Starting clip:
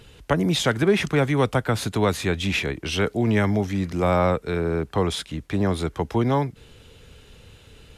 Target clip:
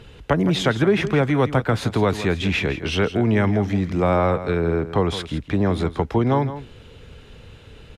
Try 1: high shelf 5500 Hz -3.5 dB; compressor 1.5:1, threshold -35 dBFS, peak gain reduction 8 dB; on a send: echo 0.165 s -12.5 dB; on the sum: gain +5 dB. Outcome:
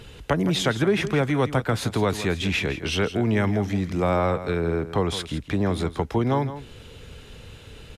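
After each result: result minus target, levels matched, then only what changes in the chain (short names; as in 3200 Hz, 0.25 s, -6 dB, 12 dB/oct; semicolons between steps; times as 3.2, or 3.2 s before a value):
8000 Hz band +6.0 dB; compressor: peak gain reduction +3.5 dB
change: high shelf 5500 Hz -14 dB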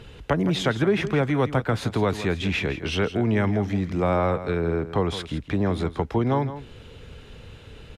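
compressor: peak gain reduction +3.5 dB
change: compressor 1.5:1, threshold -24.5 dBFS, peak gain reduction 4 dB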